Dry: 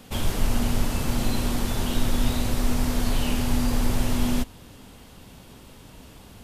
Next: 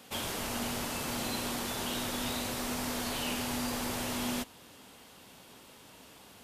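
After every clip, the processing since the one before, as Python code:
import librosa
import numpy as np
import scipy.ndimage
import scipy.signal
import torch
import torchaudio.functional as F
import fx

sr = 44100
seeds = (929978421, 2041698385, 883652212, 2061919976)

y = fx.highpass(x, sr, hz=490.0, slope=6)
y = y * librosa.db_to_amplitude(-2.5)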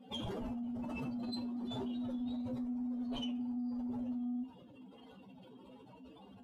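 y = fx.spec_expand(x, sr, power=3.3)
y = 10.0 ** (-30.5 / 20.0) * np.tanh(y / 10.0 ** (-30.5 / 20.0))
y = fx.comb_fb(y, sr, f0_hz=64.0, decay_s=0.2, harmonics='all', damping=0.0, mix_pct=80)
y = y * librosa.db_to_amplitude(3.5)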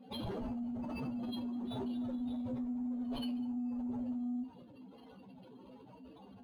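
y = x + 10.0 ** (-23.0 / 20.0) * np.pad(x, (int(202 * sr / 1000.0), 0))[:len(x)]
y = np.interp(np.arange(len(y)), np.arange(len(y))[::6], y[::6])
y = y * librosa.db_to_amplitude(1.0)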